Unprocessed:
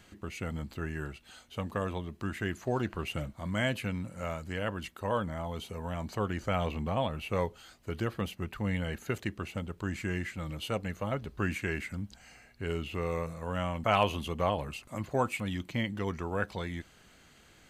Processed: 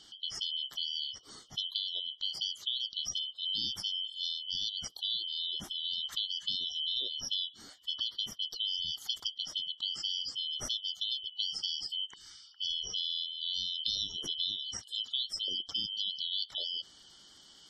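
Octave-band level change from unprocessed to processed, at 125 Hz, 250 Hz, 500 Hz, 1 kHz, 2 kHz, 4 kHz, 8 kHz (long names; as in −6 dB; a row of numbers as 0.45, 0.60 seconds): −25.5 dB, −23.0 dB, −27.0 dB, −25.5 dB, below −20 dB, +15.0 dB, +6.5 dB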